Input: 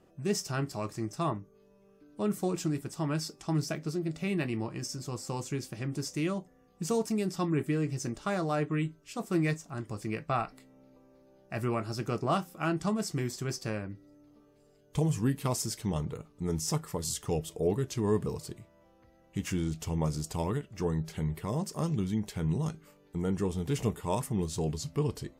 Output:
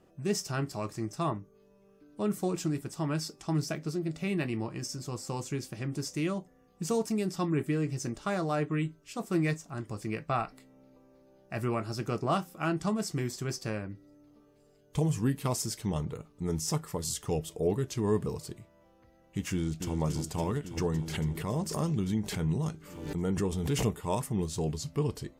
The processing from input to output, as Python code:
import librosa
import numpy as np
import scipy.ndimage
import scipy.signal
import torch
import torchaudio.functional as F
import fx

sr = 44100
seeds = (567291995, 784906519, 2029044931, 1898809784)

y = fx.echo_throw(x, sr, start_s=19.52, length_s=0.44, ms=280, feedback_pct=80, wet_db=-7.0)
y = fx.pre_swell(y, sr, db_per_s=61.0, at=(20.77, 23.98))